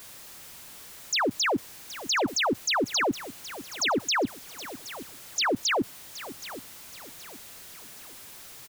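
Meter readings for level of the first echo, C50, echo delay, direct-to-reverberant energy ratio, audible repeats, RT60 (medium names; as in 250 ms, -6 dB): -15.0 dB, no reverb, 772 ms, no reverb, 3, no reverb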